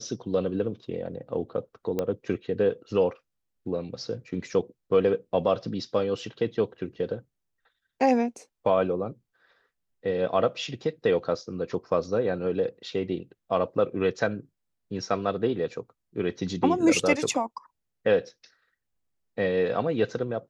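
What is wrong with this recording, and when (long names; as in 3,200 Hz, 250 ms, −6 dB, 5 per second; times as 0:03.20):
0:01.99: click −15 dBFS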